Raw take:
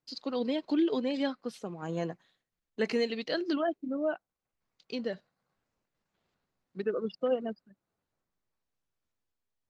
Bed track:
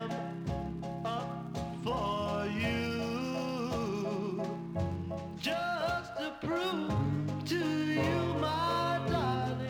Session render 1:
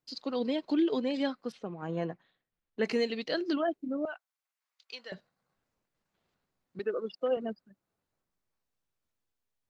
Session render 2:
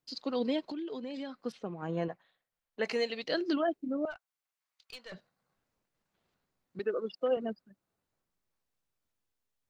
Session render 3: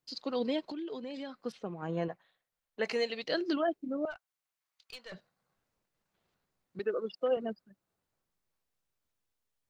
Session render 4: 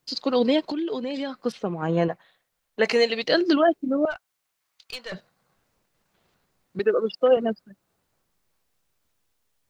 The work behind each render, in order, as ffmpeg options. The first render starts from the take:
ffmpeg -i in.wav -filter_complex "[0:a]asettb=1/sr,asplit=3[link_01][link_02][link_03];[link_01]atrim=end=1.524[link_04];[link_02]atrim=start=1.52:end=2.83,asetpts=PTS-STARTPTS,afade=type=in:duration=0.004:curve=qsin,afade=type=out:start_time=1.306:duration=0.004:curve=qsin,lowpass=3200[link_05];[link_03]atrim=start=2.826[link_06];[link_04][link_05]acrossfade=duration=0.004:curve1=hsin:curve2=qsin[link_07];[link_07][link_06]acrossfade=duration=0.004:curve1=qsin:curve2=hsin,asettb=1/sr,asplit=3[link_08][link_09][link_10];[link_08]atrim=end=4.054[link_11];[link_09]atrim=start=4.05:end=5.12,asetpts=PTS-STARTPTS,afade=type=in:duration=0.004:curve=qsin,afade=type=out:start_time=1.066:duration=0.004:curve=qsin,highpass=1100[link_12];[link_10]atrim=start=5.116[link_13];[link_11][link_12]acrossfade=duration=0.004:curve1=hsin:curve2=qsin[link_14];[link_14][link_13]acrossfade=duration=0.004:curve1=qsin:curve2=hsin,asettb=1/sr,asplit=3[link_15][link_16][link_17];[link_15]atrim=end=6.794[link_18];[link_16]atrim=start=6.79:end=7.37,asetpts=PTS-STARTPTS,afade=type=in:duration=0.004:curve=qsin,afade=type=out:start_time=0.576:duration=0.004:curve=qsin,highpass=310[link_19];[link_17]atrim=start=7.366[link_20];[link_18][link_19]acrossfade=duration=0.004:curve1=hsin:curve2=qsin[link_21];[link_21][link_20]acrossfade=duration=0.004:curve1=qsin:curve2=hsin" out.wav
ffmpeg -i in.wav -filter_complex "[0:a]asettb=1/sr,asplit=3[link_01][link_02][link_03];[link_01]atrim=end=0.664[link_04];[link_02]atrim=start=0.66:end=1.45,asetpts=PTS-STARTPTS,afade=type=in:duration=0.004:curve=qsin,afade=type=out:start_time=0.786:duration=0.004:curve=qsin,acompressor=threshold=-37dB:ratio=5:attack=3.2:release=140:knee=1:detection=peak[link_05];[link_03]atrim=start=1.446[link_06];[link_04][link_05]acrossfade=duration=0.004:curve1=hsin:curve2=qsin[link_07];[link_07][link_06]acrossfade=duration=0.004:curve1=qsin:curve2=hsin,asettb=1/sr,asplit=3[link_08][link_09][link_10];[link_08]atrim=end=2.084[link_11];[link_09]atrim=start=2.08:end=3.24,asetpts=PTS-STARTPTS,afade=type=in:duration=0.004:curve=qsin,afade=type=out:start_time=1.156:duration=0.004:curve=qsin,lowshelf=frequency=440:width_type=q:width=1.5:gain=-6.5[link_12];[link_10]atrim=start=3.236[link_13];[link_11][link_12]acrossfade=duration=0.004:curve1=hsin:curve2=qsin[link_14];[link_14][link_13]acrossfade=duration=0.004:curve1=qsin:curve2=hsin,asplit=3[link_15][link_16][link_17];[link_15]afade=type=out:start_time=4.1:duration=0.02[link_18];[link_16]aeval=exprs='(tanh(89.1*val(0)+0.4)-tanh(0.4))/89.1':channel_layout=same,afade=type=in:start_time=4.1:duration=0.02,afade=type=out:start_time=5.14:duration=0.02[link_19];[link_17]afade=type=in:start_time=5.14:duration=0.02[link_20];[link_18][link_19][link_20]amix=inputs=3:normalize=0" out.wav
ffmpeg -i in.wav -af "equalizer=frequency=260:width_type=o:width=0.44:gain=-2.5" out.wav
ffmpeg -i in.wav -af "volume=11.5dB" out.wav

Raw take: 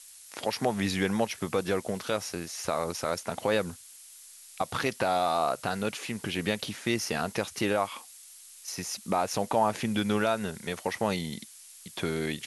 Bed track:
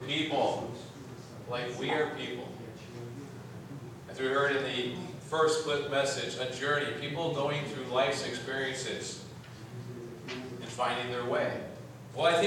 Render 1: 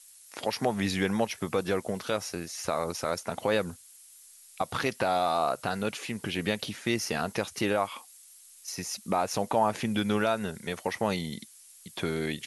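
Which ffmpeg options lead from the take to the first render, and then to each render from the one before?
ffmpeg -i in.wav -af "afftdn=noise_reduction=6:noise_floor=-51" out.wav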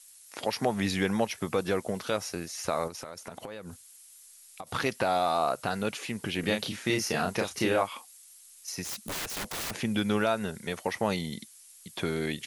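ffmpeg -i in.wav -filter_complex "[0:a]asettb=1/sr,asplit=3[link_01][link_02][link_03];[link_01]atrim=end=2.874[link_04];[link_02]atrim=start=2.87:end=4.67,asetpts=PTS-STARTPTS,afade=type=in:duration=0.004:curve=qsin,afade=type=out:start_time=1.796:duration=0.004:curve=qsin,acompressor=threshold=-36dB:ratio=12:attack=3.2:release=140:knee=1:detection=peak[link_05];[link_03]atrim=start=4.666[link_06];[link_04][link_05]acrossfade=duration=0.004:curve1=hsin:curve2=qsin[link_07];[link_07][link_06]acrossfade=duration=0.004:curve1=qsin:curve2=hsin,asettb=1/sr,asplit=3[link_08][link_09][link_10];[link_08]atrim=end=6.404[link_11];[link_09]atrim=start=6.4:end=7.83,asetpts=PTS-STARTPTS,afade=type=in:duration=0.004:curve=qsin,afade=type=out:start_time=1.426:duration=0.004:curve=qsin,asplit=2[link_12][link_13];[link_13]adelay=32,volume=-4dB[link_14];[link_12][link_14]amix=inputs=2:normalize=0,atrim=end_sample=63063[link_15];[link_10]atrim=start=7.826[link_16];[link_11][link_15]acrossfade=duration=0.004:curve1=hsin:curve2=qsin[link_17];[link_17][link_16]acrossfade=duration=0.004:curve1=qsin:curve2=hsin,asettb=1/sr,asplit=3[link_18][link_19][link_20];[link_18]atrim=end=8.844[link_21];[link_19]atrim=start=8.84:end=9.71,asetpts=PTS-STARTPTS,afade=type=in:duration=0.004:curve=qsin,afade=type=out:start_time=0.866:duration=0.004:curve=qsin,aeval=exprs='(mod(31.6*val(0)+1,2)-1)/31.6':channel_layout=same[link_22];[link_20]atrim=start=9.706[link_23];[link_21][link_22]acrossfade=duration=0.004:curve1=hsin:curve2=qsin[link_24];[link_24][link_23]acrossfade=duration=0.004:curve1=qsin:curve2=hsin" out.wav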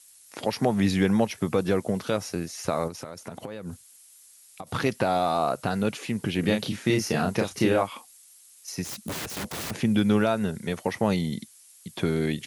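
ffmpeg -i in.wav -af "highpass=88,lowshelf=frequency=360:gain=10" out.wav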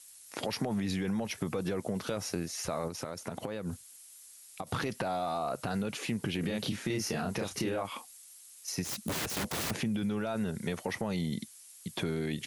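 ffmpeg -i in.wav -af "alimiter=limit=-19.5dB:level=0:latency=1:release=13,acompressor=threshold=-29dB:ratio=6" out.wav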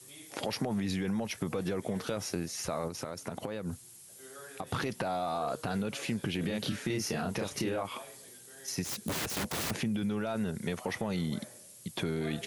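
ffmpeg -i in.wav -i bed.wav -filter_complex "[1:a]volume=-21.5dB[link_01];[0:a][link_01]amix=inputs=2:normalize=0" out.wav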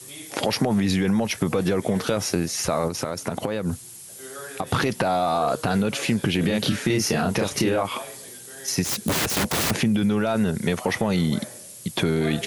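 ffmpeg -i in.wav -af "volume=11dB" out.wav

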